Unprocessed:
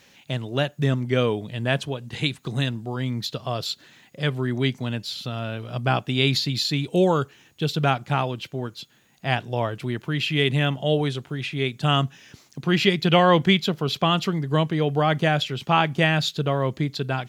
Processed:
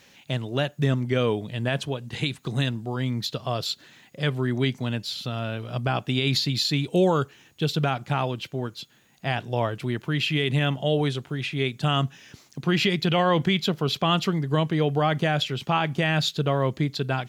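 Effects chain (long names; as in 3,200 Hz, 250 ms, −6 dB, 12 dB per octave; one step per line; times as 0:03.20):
brickwall limiter −11.5 dBFS, peak gain reduction 7 dB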